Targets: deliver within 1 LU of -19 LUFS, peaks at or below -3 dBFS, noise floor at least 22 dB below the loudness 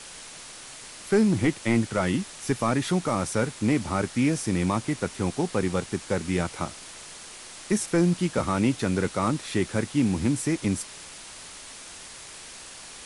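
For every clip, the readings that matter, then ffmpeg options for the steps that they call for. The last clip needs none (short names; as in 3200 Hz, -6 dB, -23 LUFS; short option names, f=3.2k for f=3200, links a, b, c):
noise floor -43 dBFS; noise floor target -48 dBFS; loudness -26.0 LUFS; peak -11.5 dBFS; loudness target -19.0 LUFS
-> -af "afftdn=nr=6:nf=-43"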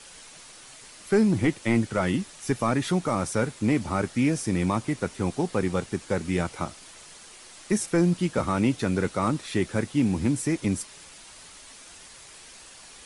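noise floor -48 dBFS; loudness -26.0 LUFS; peak -11.5 dBFS; loudness target -19.0 LUFS
-> -af "volume=7dB"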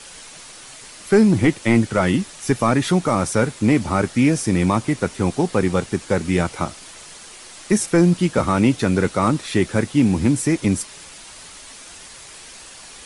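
loudness -19.0 LUFS; peak -4.5 dBFS; noise floor -41 dBFS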